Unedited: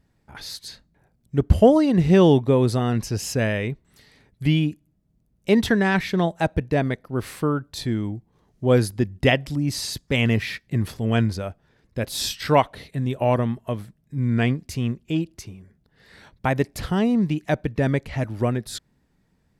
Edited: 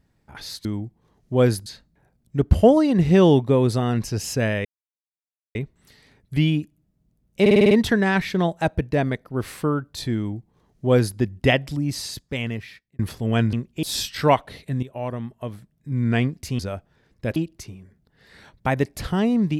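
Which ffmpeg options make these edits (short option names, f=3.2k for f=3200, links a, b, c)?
-filter_complex "[0:a]asplit=16[a][b][c][d][e][f][g][h][i][j][k][l][m][n][o][p];[a]atrim=end=0.652[q];[b]atrim=start=7.958:end=8.972[r];[c]atrim=start=0.648:end=3.64,asetpts=PTS-STARTPTS,afade=t=out:st=2.988:d=0.004:c=hsin,apad=pad_dur=0.9[s];[d]atrim=start=3.64:end=5.552,asetpts=PTS-STARTPTS,afade=t=in:d=0.004:c=hsin[t];[e]atrim=start=5.498:end=5.552[u];[f]atrim=start=5.498:end=5.552[v];[g]atrim=start=5.498:end=5.552[w];[h]atrim=start=5.498:end=5.552[x];[i]atrim=start=5.498:end=5.552[y];[j]atrim=start=5.498:end=10.78,asetpts=PTS-STARTPTS,afade=t=out:st=4.002:d=1.28[z];[k]atrim=start=10.78:end=11.322,asetpts=PTS-STARTPTS,afade=t=in:d=0.004:c=hsin[aa];[l]atrim=start=14.848:end=15.152[ab];[m]atrim=start=12.088:end=13.09,asetpts=PTS-STARTPTS,afade=t=out:st=0.998:d=0.004:c=hsin:silence=0.211349[ac];[n]atrim=start=13.09:end=14.852,asetpts=PTS-STARTPTS,afade=t=in:d=1.24:silence=0.211349[ad];[o]atrim=start=11.318:end=12.092[ae];[p]atrim=start=15.148[af];[q][r]acrossfade=d=0.004:c1=hsin:c2=hsin[ag];[s][t]concat=n=2:v=0:a=1[ah];[ag][ah]acrossfade=d=0.004:c1=hsin:c2=hsin[ai];[ai][u]acrossfade=d=0.004:c1=hsin:c2=hsin[aj];[aj][v]acrossfade=d=0.004:c1=hsin:c2=hsin[ak];[ak][w]acrossfade=d=0.004:c1=hsin:c2=hsin[al];[al][x]acrossfade=d=0.004:c1=hsin:c2=hsin[am];[am][y]acrossfade=d=0.004:c1=hsin:c2=hsin[an];[z][aa]concat=n=2:v=0:a=1[ao];[an][ao]acrossfade=d=0.004:c1=hsin:c2=hsin[ap];[ap][ab]acrossfade=d=0.004:c1=hsin:c2=hsin[aq];[ac][ad]concat=n=2:v=0:a=1[ar];[aq][ar]acrossfade=d=0.004:c1=hsin:c2=hsin[as];[as][ae]acrossfade=d=0.004:c1=hsin:c2=hsin[at];[at][af]acrossfade=d=0.004:c1=hsin:c2=hsin"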